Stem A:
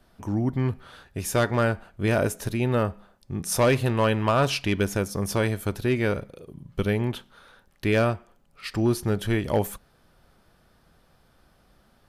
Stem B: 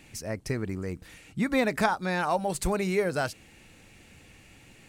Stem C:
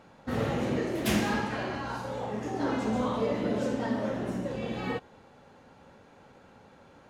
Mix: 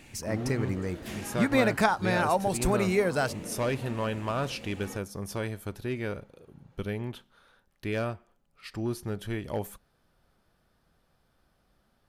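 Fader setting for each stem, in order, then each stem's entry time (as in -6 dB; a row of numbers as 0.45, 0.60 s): -9.0, +1.0, -12.5 dB; 0.00, 0.00, 0.00 s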